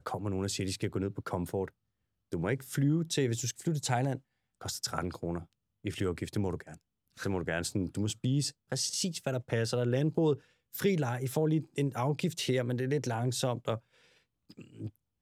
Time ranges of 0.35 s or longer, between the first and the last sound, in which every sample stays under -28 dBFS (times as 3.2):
1.64–2.33
4.15–4.66
5.38–5.86
6.55–7.25
10.33–10.82